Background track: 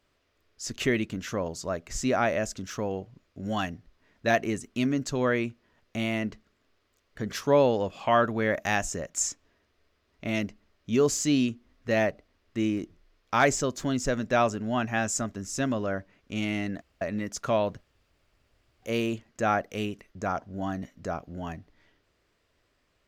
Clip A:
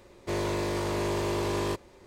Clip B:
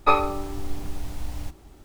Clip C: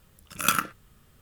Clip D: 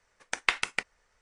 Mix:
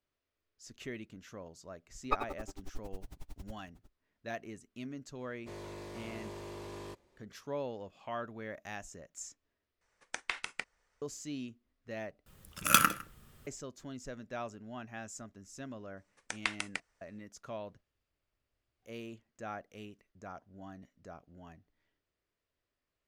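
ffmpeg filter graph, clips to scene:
ffmpeg -i bed.wav -i cue0.wav -i cue1.wav -i cue2.wav -i cue3.wav -filter_complex "[4:a]asplit=2[link_01][link_02];[0:a]volume=-17dB[link_03];[2:a]aeval=exprs='val(0)*pow(10,-38*(0.5-0.5*cos(2*PI*11*n/s))/20)':channel_layout=same[link_04];[link_01]alimiter=level_in=10dB:limit=-1dB:release=50:level=0:latency=1[link_05];[3:a]aecho=1:1:156:0.0944[link_06];[link_02]highshelf=frequency=7000:gain=6.5[link_07];[link_03]asplit=3[link_08][link_09][link_10];[link_08]atrim=end=9.814[link_11];[link_05]atrim=end=1.21,asetpts=PTS-STARTPTS,volume=-16.5dB[link_12];[link_09]atrim=start=11.016:end=12.264[link_13];[link_06]atrim=end=1.21,asetpts=PTS-STARTPTS,volume=-0.5dB[link_14];[link_10]atrim=start=13.466[link_15];[link_04]atrim=end=1.84,asetpts=PTS-STARTPTS,volume=-10dB,afade=type=in:duration=0.004:curve=hsin,afade=type=out:start_time=1.836:duration=0.004:curve=hsin,adelay=2040[link_16];[1:a]atrim=end=2.06,asetpts=PTS-STARTPTS,volume=-16dB,afade=type=in:duration=0.004:curve=hsin,afade=type=out:start_time=2.056:duration=0.004:curve=hsin,adelay=5190[link_17];[link_07]atrim=end=1.21,asetpts=PTS-STARTPTS,volume=-9dB,afade=type=in:duration=0.004:curve=hsin,afade=type=out:start_time=1.206:duration=0.004:curve=hsin,adelay=15970[link_18];[link_11][link_12]acrossfade=duration=0.004:curve1=hsin:curve2=hsin[link_19];[link_19][link_13]acrossfade=duration=0.004:curve1=hsin:curve2=hsin[link_20];[link_20][link_14]acrossfade=duration=0.004:curve1=hsin:curve2=hsin[link_21];[link_21][link_15]acrossfade=duration=0.004:curve1=hsin:curve2=hsin[link_22];[link_22][link_16][link_17][link_18]amix=inputs=4:normalize=0" out.wav

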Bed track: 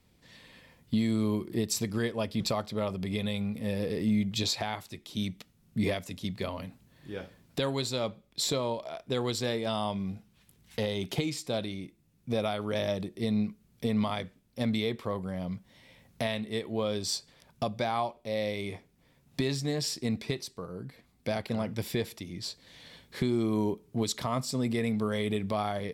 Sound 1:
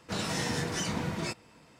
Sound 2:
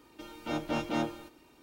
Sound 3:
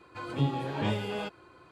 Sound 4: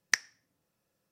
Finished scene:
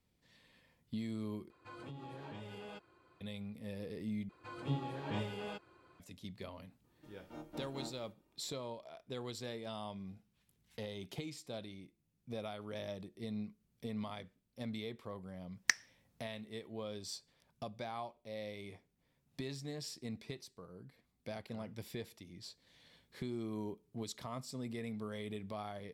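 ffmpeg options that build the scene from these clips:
ffmpeg -i bed.wav -i cue0.wav -i cue1.wav -i cue2.wav -i cue3.wav -filter_complex "[3:a]asplit=2[link_01][link_02];[0:a]volume=-13dB[link_03];[link_01]acompressor=threshold=-32dB:ratio=6:attack=3.2:release=140:knee=1:detection=peak[link_04];[2:a]equalizer=frequency=3300:width=0.6:gain=-9[link_05];[link_03]asplit=3[link_06][link_07][link_08];[link_06]atrim=end=1.504[link_09];[link_04]atrim=end=1.71,asetpts=PTS-STARTPTS,volume=-12dB[link_10];[link_07]atrim=start=3.206:end=4.294[link_11];[link_02]atrim=end=1.71,asetpts=PTS-STARTPTS,volume=-9dB[link_12];[link_08]atrim=start=5.996[link_13];[link_05]atrim=end=1.62,asetpts=PTS-STARTPTS,volume=-15dB,afade=type=in:duration=0.004:curve=hsin,afade=type=out:start_time=1.616:duration=0.004:curve=hsin,adelay=6840[link_14];[4:a]atrim=end=1.11,asetpts=PTS-STARTPTS,volume=-3.5dB,afade=type=in:duration=0.004:curve=hsin,afade=type=out:start_time=1.106:duration=0.004:curve=hsin,adelay=686196S[link_15];[link_09][link_10]acrossfade=duration=0.004:curve1=hsin:curve2=hsin[link_16];[link_16][link_11]acrossfade=duration=0.004:curve1=hsin:curve2=hsin[link_17];[link_17][link_12]acrossfade=duration=0.004:curve1=hsin:curve2=hsin[link_18];[link_18][link_13]acrossfade=duration=0.004:curve1=hsin:curve2=hsin[link_19];[link_19][link_14][link_15]amix=inputs=3:normalize=0" out.wav

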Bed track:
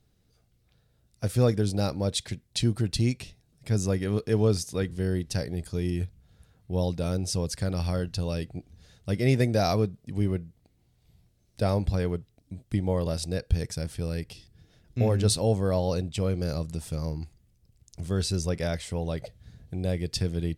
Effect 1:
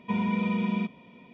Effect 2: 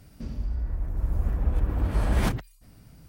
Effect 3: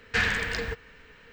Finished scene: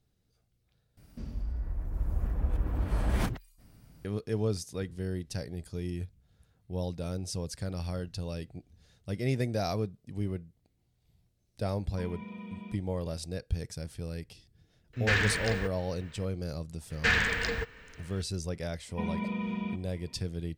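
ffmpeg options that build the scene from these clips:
ffmpeg -i bed.wav -i cue0.wav -i cue1.wav -i cue2.wav -filter_complex "[1:a]asplit=2[link_01][link_02];[3:a]asplit=2[link_03][link_04];[0:a]volume=-7dB,asplit=2[link_05][link_06];[link_05]atrim=end=0.974[link_07];[2:a]atrim=end=3.08,asetpts=PTS-STARTPTS,volume=-5dB[link_08];[link_06]atrim=start=4.046[link_09];[link_01]atrim=end=1.33,asetpts=PTS-STARTPTS,volume=-16dB,afade=type=in:duration=0.004:curve=hsin,afade=type=out:start_time=1.326:duration=0.004:curve=hsin,adelay=11890[link_10];[link_03]atrim=end=1.32,asetpts=PTS-STARTPTS,volume=-2.5dB,afade=type=in:duration=0.004:curve=hsin,afade=type=out:start_time=1.316:duration=0.004:curve=hsin,adelay=14930[link_11];[link_04]atrim=end=1.32,asetpts=PTS-STARTPTS,volume=-0.5dB,afade=type=in:duration=0.004:curve=hsin,afade=type=out:start_time=1.316:duration=0.004:curve=hsin,adelay=16900[link_12];[link_02]atrim=end=1.33,asetpts=PTS-STARTPTS,volume=-6.5dB,afade=type=in:duration=0.004:curve=hsin,afade=type=out:start_time=1.326:duration=0.004:curve=hsin,adelay=18890[link_13];[link_07][link_08]acrossfade=duration=0.004:curve1=hsin:curve2=hsin[link_14];[link_14][link_09]acrossfade=duration=0.004:curve1=hsin:curve2=hsin[link_15];[link_15][link_10][link_11][link_12][link_13]amix=inputs=5:normalize=0" out.wav

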